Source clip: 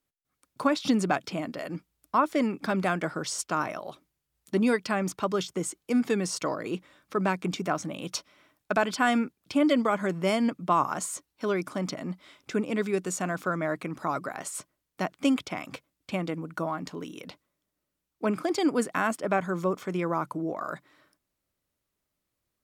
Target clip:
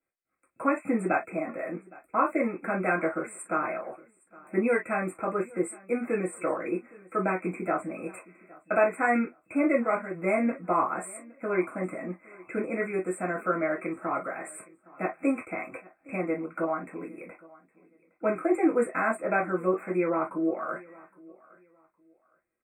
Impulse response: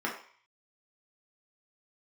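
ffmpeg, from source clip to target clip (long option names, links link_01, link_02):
-filter_complex "[0:a]asplit=3[link_01][link_02][link_03];[link_01]afade=type=out:start_time=9.7:duration=0.02[link_04];[link_02]agate=range=-7dB:threshold=-24dB:ratio=16:detection=peak,afade=type=in:start_time=9.7:duration=0.02,afade=type=out:start_time=10.13:duration=0.02[link_05];[link_03]afade=type=in:start_time=10.13:duration=0.02[link_06];[link_04][link_05][link_06]amix=inputs=3:normalize=0,aecho=1:1:814|1628:0.0708|0.0177[link_07];[1:a]atrim=start_sample=2205,afade=type=out:start_time=0.15:duration=0.01,atrim=end_sample=7056,asetrate=70560,aresample=44100[link_08];[link_07][link_08]afir=irnorm=-1:irlink=0,afftfilt=real='re*(1-between(b*sr/4096,2600,7200))':imag='im*(1-between(b*sr/4096,2600,7200))':win_size=4096:overlap=0.75,volume=-3dB"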